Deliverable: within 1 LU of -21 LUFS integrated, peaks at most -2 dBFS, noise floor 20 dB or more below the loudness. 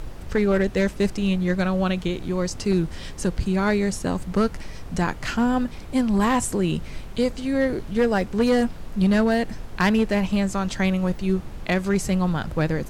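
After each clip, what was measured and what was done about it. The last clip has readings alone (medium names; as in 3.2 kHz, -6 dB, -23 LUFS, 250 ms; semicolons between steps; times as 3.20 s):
clipped samples 0.9%; clipping level -13.5 dBFS; noise floor -37 dBFS; noise floor target -44 dBFS; loudness -23.5 LUFS; peak level -13.5 dBFS; loudness target -21.0 LUFS
-> clip repair -13.5 dBFS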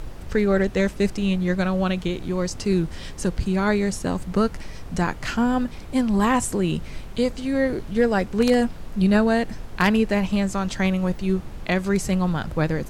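clipped samples 0.0%; noise floor -37 dBFS; noise floor target -43 dBFS
-> noise print and reduce 6 dB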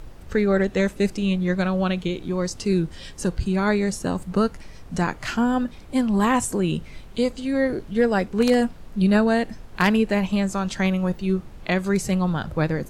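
noise floor -42 dBFS; noise floor target -43 dBFS
-> noise print and reduce 6 dB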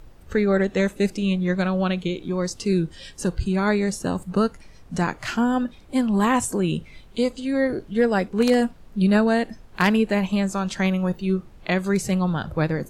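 noise floor -47 dBFS; loudness -23.0 LUFS; peak level -5.0 dBFS; loudness target -21.0 LUFS
-> trim +2 dB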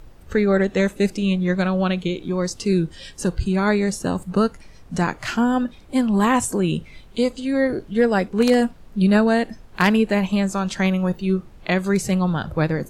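loudness -21.0 LUFS; peak level -3.0 dBFS; noise floor -45 dBFS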